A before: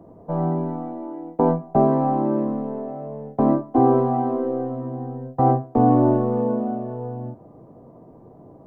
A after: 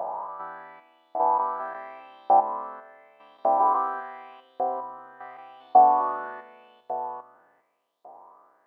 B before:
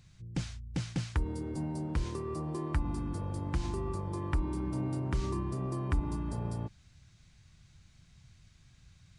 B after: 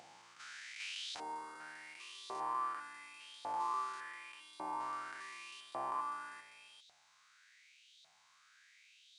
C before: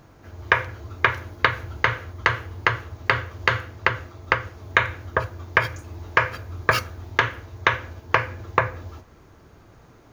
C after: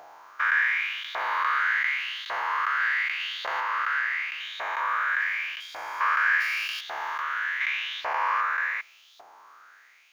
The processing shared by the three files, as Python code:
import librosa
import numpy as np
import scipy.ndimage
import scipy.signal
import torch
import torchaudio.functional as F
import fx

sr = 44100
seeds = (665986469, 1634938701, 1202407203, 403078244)

y = fx.spec_steps(x, sr, hold_ms=400)
y = fx.filter_lfo_highpass(y, sr, shape='saw_up', hz=0.87, low_hz=710.0, high_hz=3800.0, q=5.4)